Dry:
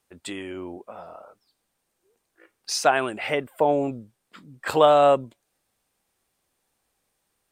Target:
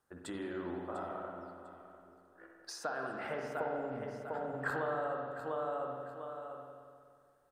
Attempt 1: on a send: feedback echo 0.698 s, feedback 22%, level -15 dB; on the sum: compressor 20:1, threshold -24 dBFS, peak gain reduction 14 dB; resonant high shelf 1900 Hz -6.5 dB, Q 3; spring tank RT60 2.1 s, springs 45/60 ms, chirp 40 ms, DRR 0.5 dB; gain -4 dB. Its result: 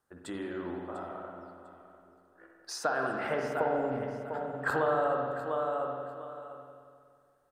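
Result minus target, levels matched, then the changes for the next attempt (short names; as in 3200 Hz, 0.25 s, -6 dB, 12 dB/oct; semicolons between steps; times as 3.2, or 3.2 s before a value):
compressor: peak gain reduction -8 dB
change: compressor 20:1, threshold -32.5 dBFS, peak gain reduction 22 dB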